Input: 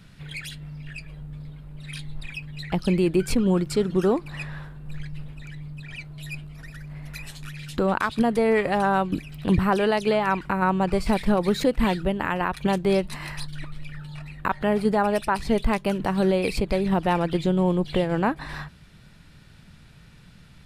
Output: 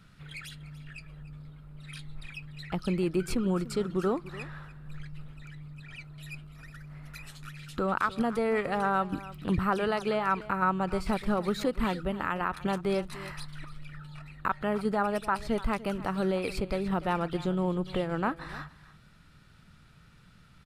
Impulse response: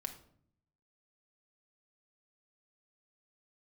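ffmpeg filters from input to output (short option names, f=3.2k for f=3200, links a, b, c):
-filter_complex "[0:a]equalizer=f=1.3k:t=o:w=0.29:g=10,asplit=2[a][b];[b]aecho=0:1:293:0.141[c];[a][c]amix=inputs=2:normalize=0,volume=-7.5dB"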